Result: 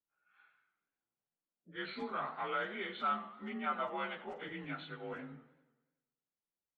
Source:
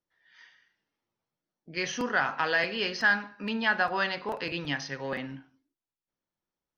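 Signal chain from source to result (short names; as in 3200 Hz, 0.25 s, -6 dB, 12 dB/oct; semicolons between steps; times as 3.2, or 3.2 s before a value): inharmonic rescaling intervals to 88%; low-pass opened by the level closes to 2500 Hz, open at -26 dBFS; warbling echo 95 ms, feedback 57%, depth 158 cents, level -16 dB; gain -9 dB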